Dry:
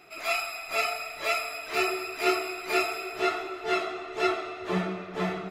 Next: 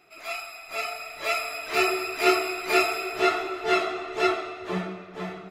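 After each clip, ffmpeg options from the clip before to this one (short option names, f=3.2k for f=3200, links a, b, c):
-af "dynaudnorm=f=200:g=13:m=13dB,volume=-5.5dB"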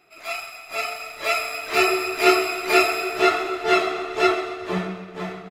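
-filter_complex "[0:a]asplit=2[a][b];[b]aeval=exprs='sgn(val(0))*max(abs(val(0))-0.00841,0)':c=same,volume=-3.5dB[c];[a][c]amix=inputs=2:normalize=0,aecho=1:1:130|260|390|520|650|780:0.178|0.101|0.0578|0.0329|0.0188|0.0107"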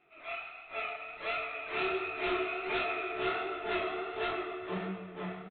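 -af "aresample=8000,asoftclip=type=tanh:threshold=-21dB,aresample=44100,flanger=delay=20:depth=7.8:speed=1.4,volume=-5dB"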